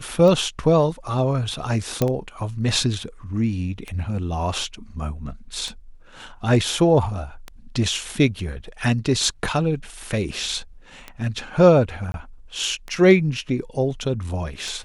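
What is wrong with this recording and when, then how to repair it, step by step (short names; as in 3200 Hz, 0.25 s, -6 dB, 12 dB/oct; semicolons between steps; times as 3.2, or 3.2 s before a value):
tick 33 1/3 rpm -16 dBFS
2.02 pop -6 dBFS
12.12–12.14 gap 21 ms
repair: de-click; interpolate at 12.12, 21 ms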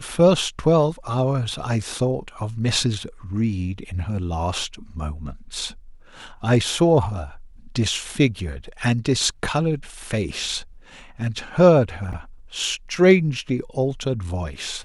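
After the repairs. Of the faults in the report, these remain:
none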